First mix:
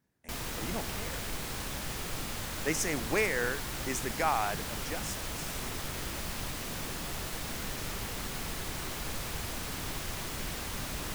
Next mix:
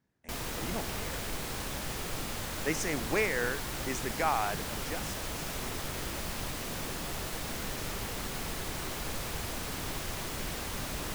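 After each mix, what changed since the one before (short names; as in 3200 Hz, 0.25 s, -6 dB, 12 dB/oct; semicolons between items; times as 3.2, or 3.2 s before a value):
speech: add air absorption 54 m; background: add bell 510 Hz +2.5 dB 1.8 oct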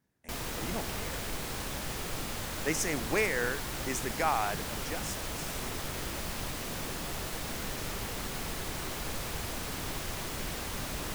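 speech: remove air absorption 54 m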